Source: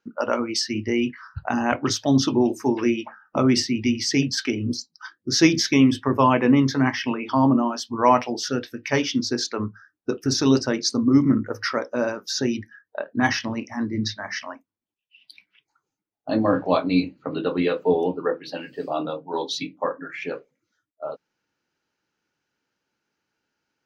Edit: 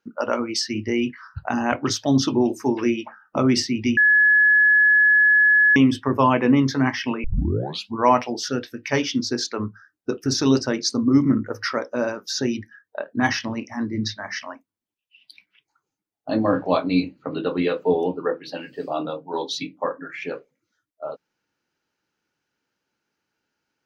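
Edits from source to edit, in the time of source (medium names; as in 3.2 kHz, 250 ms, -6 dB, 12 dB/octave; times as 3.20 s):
3.97–5.76 s: bleep 1.7 kHz -12 dBFS
7.24 s: tape start 0.72 s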